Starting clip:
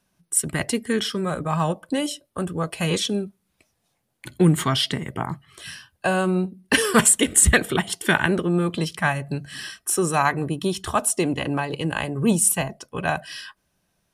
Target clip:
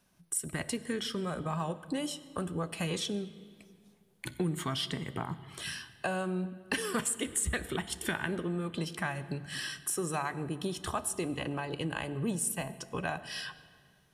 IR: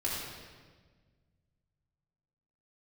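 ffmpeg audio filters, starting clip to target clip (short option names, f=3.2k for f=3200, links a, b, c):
-filter_complex "[0:a]acompressor=threshold=-35dB:ratio=3,asplit=2[a][b];[1:a]atrim=start_sample=2205,asetrate=34398,aresample=44100,adelay=12[c];[b][c]afir=irnorm=-1:irlink=0,volume=-21dB[d];[a][d]amix=inputs=2:normalize=0"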